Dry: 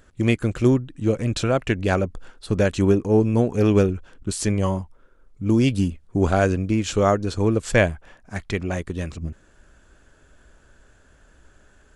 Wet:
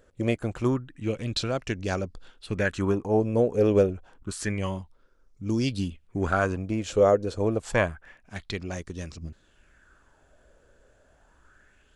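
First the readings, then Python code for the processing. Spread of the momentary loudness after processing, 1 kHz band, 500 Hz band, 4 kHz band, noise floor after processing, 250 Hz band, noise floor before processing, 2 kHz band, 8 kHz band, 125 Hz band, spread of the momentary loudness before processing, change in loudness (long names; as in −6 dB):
16 LU, −4.0 dB, −3.5 dB, −3.0 dB, −62 dBFS, −7.5 dB, −56 dBFS, −4.0 dB, −7.0 dB, −8.0 dB, 12 LU, −5.5 dB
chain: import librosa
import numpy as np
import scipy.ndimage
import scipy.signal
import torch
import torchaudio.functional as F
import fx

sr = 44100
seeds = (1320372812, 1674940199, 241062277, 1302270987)

y = fx.bell_lfo(x, sr, hz=0.28, low_hz=500.0, high_hz=5700.0, db=12)
y = F.gain(torch.from_numpy(y), -8.0).numpy()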